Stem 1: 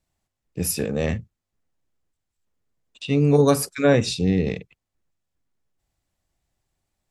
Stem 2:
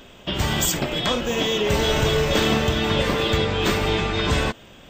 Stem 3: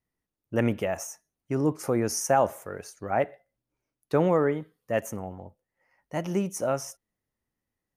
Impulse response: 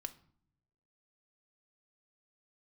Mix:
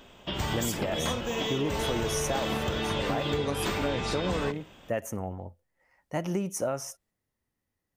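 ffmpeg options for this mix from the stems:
-filter_complex "[0:a]volume=-8dB[link_01];[1:a]equalizer=frequency=910:width_type=o:width=0.76:gain=4,volume=-7.5dB[link_02];[2:a]equalizer=frequency=87:width=5.2:gain=5.5,volume=1.5dB[link_03];[link_01][link_03]amix=inputs=2:normalize=0,alimiter=limit=-16.5dB:level=0:latency=1:release=261,volume=0dB[link_04];[link_02][link_04]amix=inputs=2:normalize=0,acompressor=threshold=-25dB:ratio=6"

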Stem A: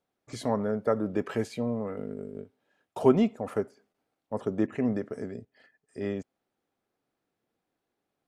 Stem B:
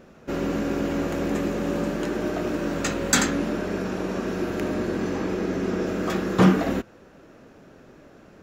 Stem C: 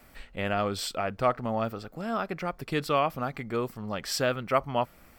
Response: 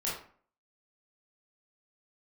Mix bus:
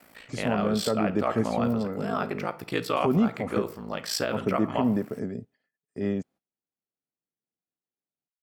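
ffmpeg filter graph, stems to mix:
-filter_complex "[0:a]equalizer=frequency=170:width_type=o:width=1.3:gain=7.5,agate=range=-21dB:threshold=-52dB:ratio=16:detection=peak,volume=0.5dB[link_01];[2:a]highpass=160,aeval=exprs='val(0)*sin(2*PI*28*n/s)':channel_layout=same,volume=3dB,asplit=2[link_02][link_03];[link_03]volume=-16dB[link_04];[3:a]atrim=start_sample=2205[link_05];[link_04][link_05]afir=irnorm=-1:irlink=0[link_06];[link_01][link_02][link_06]amix=inputs=3:normalize=0,alimiter=limit=-14dB:level=0:latency=1:release=85"

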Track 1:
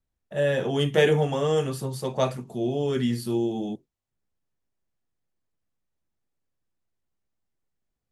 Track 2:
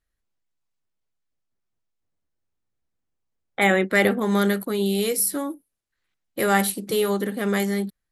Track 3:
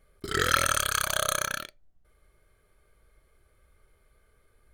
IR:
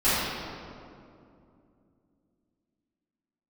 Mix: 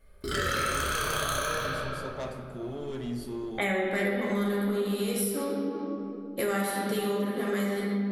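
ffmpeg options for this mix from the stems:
-filter_complex "[0:a]asoftclip=type=tanh:threshold=-22.5dB,volume=-9.5dB,asplit=2[link_01][link_02];[link_02]volume=-21.5dB[link_03];[1:a]volume=-6.5dB,asplit=2[link_04][link_05];[link_05]volume=-10.5dB[link_06];[2:a]asoftclip=type=tanh:threshold=-9dB,volume=-4dB,asplit=2[link_07][link_08];[link_08]volume=-8dB[link_09];[3:a]atrim=start_sample=2205[link_10];[link_03][link_06][link_09]amix=inputs=3:normalize=0[link_11];[link_11][link_10]afir=irnorm=-1:irlink=0[link_12];[link_01][link_04][link_07][link_12]amix=inputs=4:normalize=0,acompressor=threshold=-27dB:ratio=4"

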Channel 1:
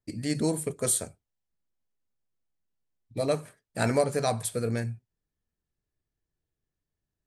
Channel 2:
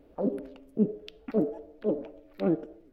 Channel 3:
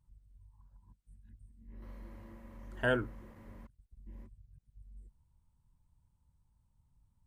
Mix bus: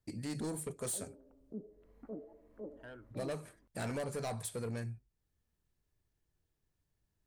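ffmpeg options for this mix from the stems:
ffmpeg -i stem1.wav -i stem2.wav -i stem3.wav -filter_complex "[0:a]acontrast=88,asoftclip=type=tanh:threshold=-18.5dB,volume=-5dB[link_01];[1:a]lowpass=frequency=1400:width=0.5412,lowpass=frequency=1400:width=1.3066,adelay=750,volume=-11.5dB[link_02];[2:a]asoftclip=type=tanh:threshold=-20dB,volume=-16dB[link_03];[link_01][link_02][link_03]amix=inputs=3:normalize=0,acompressor=threshold=-55dB:ratio=1.5" out.wav

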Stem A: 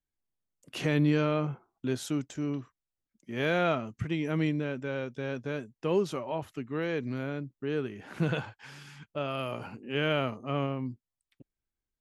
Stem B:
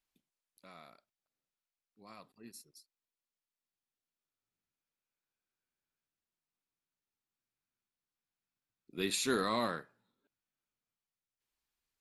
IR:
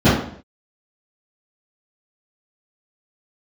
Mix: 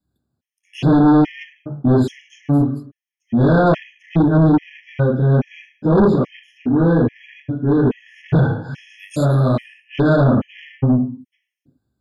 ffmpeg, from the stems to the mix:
-filter_complex "[0:a]highpass=58,volume=-2.5dB,asplit=2[link_01][link_02];[link_02]volume=-9dB[link_03];[1:a]volume=1.5dB,asplit=2[link_04][link_05];[link_05]apad=whole_len=529621[link_06];[link_01][link_06]sidechaingate=range=-33dB:threshold=-58dB:ratio=16:detection=peak[link_07];[2:a]atrim=start_sample=2205[link_08];[link_03][link_08]afir=irnorm=-1:irlink=0[link_09];[link_07][link_04][link_09]amix=inputs=3:normalize=0,asoftclip=type=tanh:threshold=-9dB,afftfilt=real='re*gt(sin(2*PI*1.2*pts/sr)*(1-2*mod(floor(b*sr/1024/1700),2)),0)':imag='im*gt(sin(2*PI*1.2*pts/sr)*(1-2*mod(floor(b*sr/1024/1700),2)),0)':win_size=1024:overlap=0.75"

